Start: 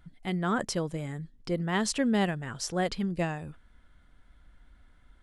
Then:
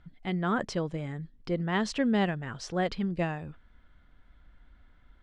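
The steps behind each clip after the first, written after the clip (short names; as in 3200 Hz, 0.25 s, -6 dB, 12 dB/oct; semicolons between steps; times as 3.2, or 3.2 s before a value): LPF 4200 Hz 12 dB/oct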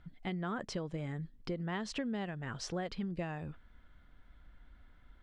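compressor 10:1, threshold -33 dBFS, peak gain reduction 12 dB; gain -1 dB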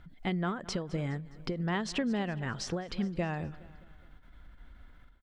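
feedback echo 0.208 s, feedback 51%, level -19 dB; ending taper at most 110 dB/s; gain +6 dB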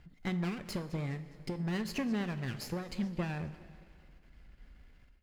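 minimum comb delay 0.43 ms; on a send at -10 dB: reverb, pre-delay 3 ms; on the sum: gain -3 dB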